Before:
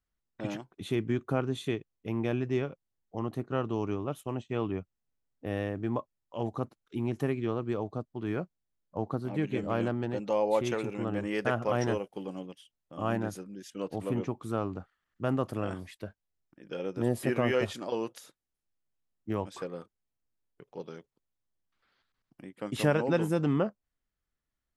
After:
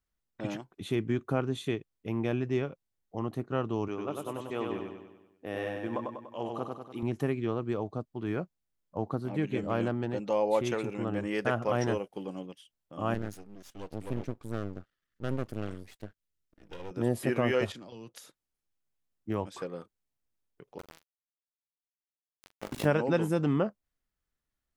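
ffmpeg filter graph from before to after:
ffmpeg -i in.wav -filter_complex "[0:a]asettb=1/sr,asplit=3[link_01][link_02][link_03];[link_01]atrim=end=3.884[link_04];[link_02]atrim=start=3.88:end=7.03,asetpts=PTS-STARTPTS,afade=type=in:duration=0.004:curve=qsin,afade=type=out:start_time=3.146:duration=0.004:curve=qsin,highpass=frequency=360:poles=1,aecho=1:1:97|194|291|388|485|582|679:0.668|0.354|0.188|0.0995|0.0527|0.0279|0.0148,atrim=end_sample=138915[link_05];[link_03]atrim=start=7.026[link_06];[link_04][link_05]acrossfade=duration=0.004:curve1=hsin:curve2=qsin[link_07];[link_07][link_06]acrossfade=duration=0.004:curve1=qsin:curve2=hsin,asettb=1/sr,asplit=3[link_08][link_09][link_10];[link_08]atrim=end=13.144[link_11];[link_09]atrim=start=13.14:end=16.91,asetpts=PTS-STARTPTS,afade=type=in:duration=0.004:curve=qsin,afade=type=out:start_time=3.766:duration=0.004:curve=qsin,equalizer=frequency=830:width=1.9:gain=-13,aeval=exprs='max(val(0),0)':channel_layout=same[link_12];[link_10]atrim=start=16.906[link_13];[link_11][link_12]acrossfade=duration=0.004:curve1=hsin:curve2=qsin[link_14];[link_14][link_13]acrossfade=duration=0.004:curve1=qsin:curve2=hsin,asettb=1/sr,asplit=3[link_15][link_16][link_17];[link_15]atrim=end=17.724[link_18];[link_16]atrim=start=17.72:end=18.14,asetpts=PTS-STARTPTS,afade=type=in:duration=0.004:curve=qsin,afade=type=out:start_time=0.416:duration=0.004:curve=qsin,aemphasis=mode=reproduction:type=75fm,acrossover=split=170|3000[link_19][link_20][link_21];[link_20]acompressor=threshold=-46dB:ratio=10:attack=3.2:release=140:knee=2.83:detection=peak[link_22];[link_19][link_22][link_21]amix=inputs=3:normalize=0,agate=range=-33dB:threshold=-50dB:ratio=3:release=100:detection=peak[link_23];[link_17]atrim=start=18.136[link_24];[link_18][link_23]acrossfade=duration=0.004:curve1=hsin:curve2=qsin[link_25];[link_25][link_24]acrossfade=duration=0.004:curve1=qsin:curve2=hsin,asettb=1/sr,asplit=3[link_26][link_27][link_28];[link_26]atrim=end=20.784[link_29];[link_27]atrim=start=20.78:end=22.86,asetpts=PTS-STARTPTS,afade=type=in:duration=0.004:curve=qsin,afade=type=out:start_time=2.076:duration=0.004:curve=qsin,aeval=exprs='val(0)*gte(abs(val(0)),0.0211)':channel_layout=same,tremolo=f=53:d=0.788,asplit=2[link_30][link_31];[link_31]adelay=43,volume=-13.5dB[link_32];[link_30][link_32]amix=inputs=2:normalize=0,atrim=end_sample=91728[link_33];[link_28]atrim=start=22.856[link_34];[link_29][link_33]acrossfade=duration=0.004:curve1=hsin:curve2=qsin[link_35];[link_35][link_34]acrossfade=duration=0.004:curve1=qsin:curve2=hsin" out.wav

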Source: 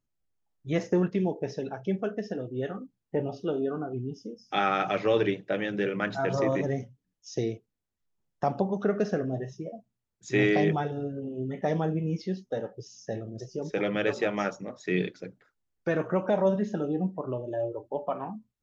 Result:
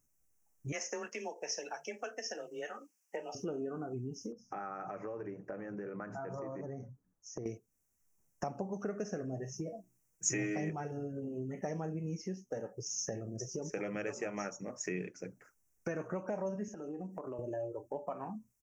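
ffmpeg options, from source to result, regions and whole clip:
ffmpeg -i in.wav -filter_complex "[0:a]asettb=1/sr,asplit=3[link_01][link_02][link_03];[link_01]atrim=end=0.724[link_04];[link_02]atrim=start=0.72:end=3.35,asetpts=PTS-STARTPTS,afade=type=in:duration=0.004:curve=qsin,afade=type=out:start_time=2.626:duration=0.004:curve=qsin,afreqshift=24,highpass=690,equalizer=frequency=3800:width=0.98:gain=11.5[link_05];[link_03]atrim=start=3.346[link_06];[link_04][link_05]acrossfade=duration=0.004:curve1=hsin:curve2=qsin[link_07];[link_07][link_06]acrossfade=duration=0.004:curve1=qsin:curve2=hsin,asettb=1/sr,asplit=3[link_08][link_09][link_10];[link_08]atrim=end=4.324[link_11];[link_09]atrim=start=4.32:end=7.46,asetpts=PTS-STARTPTS,afade=type=in:duration=0.004:curve=qsin,afade=type=out:start_time=3.136:duration=0.004:curve=qsin,acompressor=threshold=-44dB:ratio=2.5:attack=3.2:release=140:knee=1:detection=peak,highshelf=frequency=1900:width_type=q:width=1.5:gain=-14[link_12];[link_10]atrim=start=7.456[link_13];[link_11][link_12]acrossfade=duration=0.004:curve1=hsin:curve2=qsin[link_14];[link_14][link_13]acrossfade=duration=0.004:curve1=qsin:curve2=hsin,asettb=1/sr,asplit=3[link_15][link_16][link_17];[link_15]atrim=end=9.534[link_18];[link_16]atrim=start=9.53:end=10.7,asetpts=PTS-STARTPTS,afade=type=in:duration=0.004:curve=qsin,afade=type=out:start_time=1.166:duration=0.004:curve=qsin,bandreject=frequency=60:width_type=h:width=6,bandreject=frequency=120:width_type=h:width=6,bandreject=frequency=180:width_type=h:width=6,bandreject=frequency=240:width_type=h:width=6,bandreject=frequency=300:width_type=h:width=6,bandreject=frequency=360:width_type=h:width=6,aecho=1:1:6.3:0.73,atrim=end_sample=51597[link_19];[link_17]atrim=start=10.696[link_20];[link_18][link_19]acrossfade=duration=0.004:curve1=hsin:curve2=qsin[link_21];[link_21][link_20]acrossfade=duration=0.004:curve1=qsin:curve2=hsin,asettb=1/sr,asplit=3[link_22][link_23][link_24];[link_22]atrim=end=16.684[link_25];[link_23]atrim=start=16.68:end=17.39,asetpts=PTS-STARTPTS,afade=type=in:duration=0.004:curve=qsin,afade=type=out:start_time=0.706:duration=0.004:curve=qsin,highpass=220,acompressor=threshold=-38dB:ratio=4:attack=3.2:release=140:knee=1:detection=peak[link_26];[link_24]atrim=start=17.386[link_27];[link_25][link_26]acrossfade=duration=0.004:curve1=hsin:curve2=qsin[link_28];[link_28][link_27]acrossfade=duration=0.004:curve1=qsin:curve2=hsin,bandreject=frequency=3500:width=13,acompressor=threshold=-43dB:ratio=3,firequalizer=gain_entry='entry(2600,0);entry(3800,-24);entry(5700,12)':delay=0.05:min_phase=1,volume=3dB" out.wav

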